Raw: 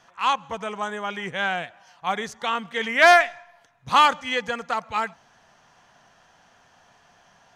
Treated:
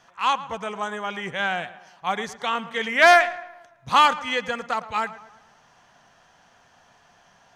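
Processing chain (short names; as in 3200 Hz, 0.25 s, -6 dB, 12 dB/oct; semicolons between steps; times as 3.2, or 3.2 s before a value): tape echo 0.112 s, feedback 52%, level -15 dB, low-pass 2600 Hz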